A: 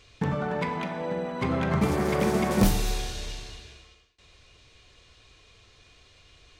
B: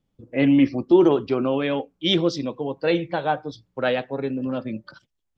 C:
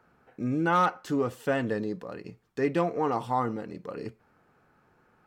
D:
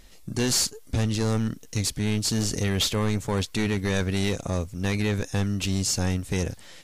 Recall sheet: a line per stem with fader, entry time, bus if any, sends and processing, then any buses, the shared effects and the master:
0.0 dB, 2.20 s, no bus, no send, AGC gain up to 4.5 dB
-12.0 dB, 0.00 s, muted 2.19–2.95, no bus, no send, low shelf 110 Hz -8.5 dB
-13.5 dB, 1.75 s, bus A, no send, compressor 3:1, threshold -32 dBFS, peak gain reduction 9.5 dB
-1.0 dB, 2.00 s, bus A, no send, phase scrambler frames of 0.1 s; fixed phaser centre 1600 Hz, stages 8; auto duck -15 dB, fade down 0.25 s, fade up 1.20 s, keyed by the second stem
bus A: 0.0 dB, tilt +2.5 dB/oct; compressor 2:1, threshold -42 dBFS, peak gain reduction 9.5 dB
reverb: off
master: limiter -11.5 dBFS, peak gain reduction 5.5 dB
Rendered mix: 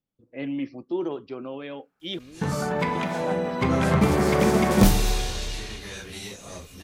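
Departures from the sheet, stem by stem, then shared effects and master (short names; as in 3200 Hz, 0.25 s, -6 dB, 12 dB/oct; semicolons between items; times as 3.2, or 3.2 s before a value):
stem C: missing compressor 3:1, threshold -32 dBFS, peak gain reduction 9.5 dB; stem D: missing fixed phaser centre 1600 Hz, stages 8; master: missing limiter -11.5 dBFS, peak gain reduction 5.5 dB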